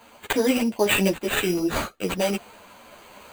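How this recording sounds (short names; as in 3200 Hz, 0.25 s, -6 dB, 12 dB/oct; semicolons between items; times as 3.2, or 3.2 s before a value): random-step tremolo; aliases and images of a low sample rate 5400 Hz, jitter 0%; a shimmering, thickened sound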